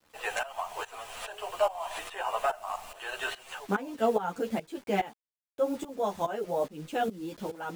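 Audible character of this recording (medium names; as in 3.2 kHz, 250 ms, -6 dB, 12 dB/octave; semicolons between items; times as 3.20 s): a quantiser's noise floor 8-bit, dither none; tremolo saw up 2.4 Hz, depth 90%; a shimmering, thickened sound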